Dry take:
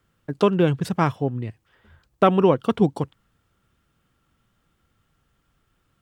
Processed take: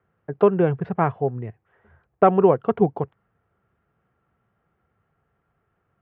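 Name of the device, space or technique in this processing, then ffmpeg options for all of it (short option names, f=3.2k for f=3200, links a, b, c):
bass cabinet: -af "highpass=73,equalizer=f=280:t=q:w=4:g=-7,equalizer=f=420:t=q:w=4:g=6,equalizer=f=720:t=q:w=4:g=7,lowpass=f=2.1k:w=0.5412,lowpass=f=2.1k:w=1.3066,volume=-1.5dB"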